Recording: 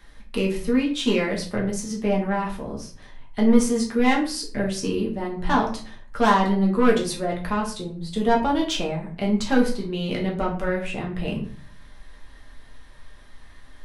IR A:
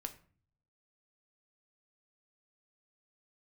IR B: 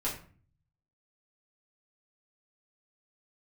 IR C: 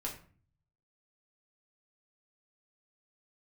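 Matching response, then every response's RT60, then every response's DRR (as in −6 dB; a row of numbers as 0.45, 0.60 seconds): C; 0.45, 0.45, 0.45 seconds; 6.5, −7.5, −2.5 decibels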